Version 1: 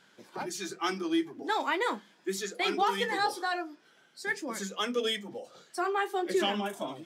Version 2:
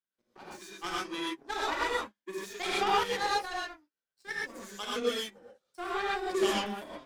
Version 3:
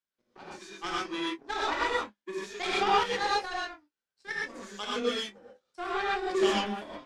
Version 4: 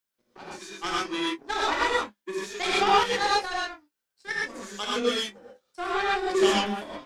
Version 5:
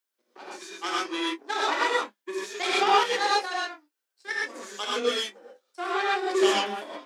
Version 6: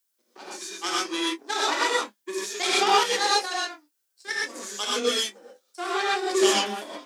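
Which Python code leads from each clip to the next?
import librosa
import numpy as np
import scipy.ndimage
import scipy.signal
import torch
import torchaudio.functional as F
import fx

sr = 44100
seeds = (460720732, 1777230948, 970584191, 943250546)

y1 = fx.power_curve(x, sr, exponent=2.0)
y1 = fx.rev_gated(y1, sr, seeds[0], gate_ms=150, shape='rising', drr_db=-6.0)
y1 = F.gain(torch.from_numpy(y1), -1.0).numpy()
y2 = scipy.signal.sosfilt(scipy.signal.butter(2, 6700.0, 'lowpass', fs=sr, output='sos'), y1)
y2 = fx.doubler(y2, sr, ms=24.0, db=-11)
y2 = F.gain(torch.from_numpy(y2), 1.5).numpy()
y3 = fx.high_shelf(y2, sr, hz=8100.0, db=8.0)
y3 = F.gain(torch.from_numpy(y3), 4.0).numpy()
y4 = scipy.signal.sosfilt(scipy.signal.butter(4, 280.0, 'highpass', fs=sr, output='sos'), y3)
y5 = fx.bass_treble(y4, sr, bass_db=6, treble_db=10)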